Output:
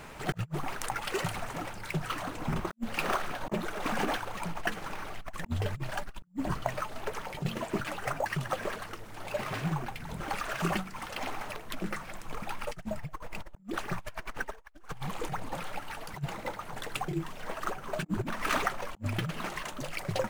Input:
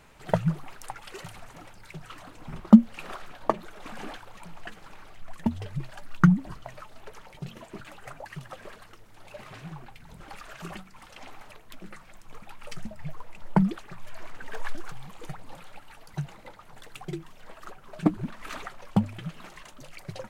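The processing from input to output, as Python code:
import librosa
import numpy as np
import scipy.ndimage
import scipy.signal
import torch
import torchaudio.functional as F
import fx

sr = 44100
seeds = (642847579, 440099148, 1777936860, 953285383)

p1 = fx.sample_hold(x, sr, seeds[0], rate_hz=7400.0, jitter_pct=0)
p2 = x + (p1 * librosa.db_to_amplitude(-7.0))
p3 = fx.over_compress(p2, sr, threshold_db=-33.0, ratio=-0.5)
p4 = fx.low_shelf(p3, sr, hz=86.0, db=-6.0)
y = p4 * librosa.db_to_amplitude(1.5)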